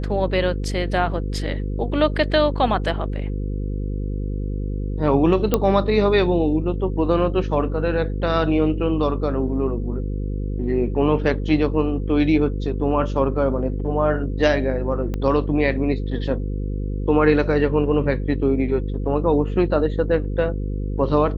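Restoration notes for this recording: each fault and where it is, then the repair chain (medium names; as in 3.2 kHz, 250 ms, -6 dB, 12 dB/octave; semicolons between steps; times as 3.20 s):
buzz 50 Hz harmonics 10 -25 dBFS
5.54 s: pop -4 dBFS
15.14 s: pop -15 dBFS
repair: de-click; de-hum 50 Hz, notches 10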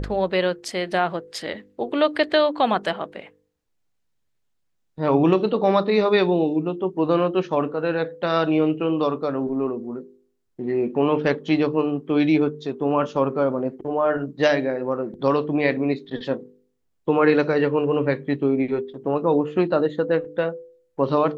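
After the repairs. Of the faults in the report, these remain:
15.14 s: pop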